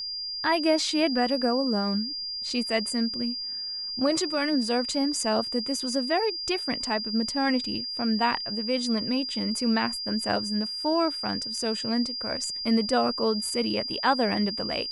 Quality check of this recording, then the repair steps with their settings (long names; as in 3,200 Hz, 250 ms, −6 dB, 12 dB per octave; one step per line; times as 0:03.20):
whistle 4,800 Hz −31 dBFS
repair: notch filter 4,800 Hz, Q 30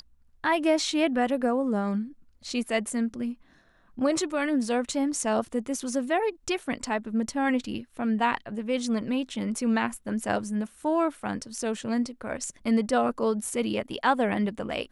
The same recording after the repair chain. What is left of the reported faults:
none of them is left